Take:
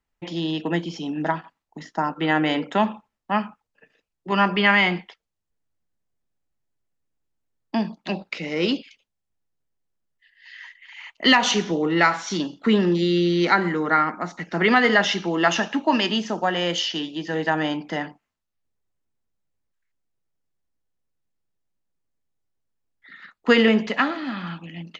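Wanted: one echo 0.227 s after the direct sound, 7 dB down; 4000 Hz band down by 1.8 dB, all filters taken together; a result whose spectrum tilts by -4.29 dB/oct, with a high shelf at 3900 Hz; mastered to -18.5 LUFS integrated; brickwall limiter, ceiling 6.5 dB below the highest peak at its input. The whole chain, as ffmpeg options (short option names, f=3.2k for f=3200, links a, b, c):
-af "highshelf=f=3.9k:g=8.5,equalizer=f=4k:t=o:g=-8,alimiter=limit=-11dB:level=0:latency=1,aecho=1:1:227:0.447,volume=4.5dB"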